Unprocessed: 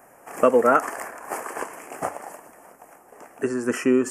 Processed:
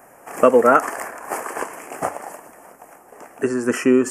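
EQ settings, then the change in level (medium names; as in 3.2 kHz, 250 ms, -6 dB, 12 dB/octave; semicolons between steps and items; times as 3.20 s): flat; +4.0 dB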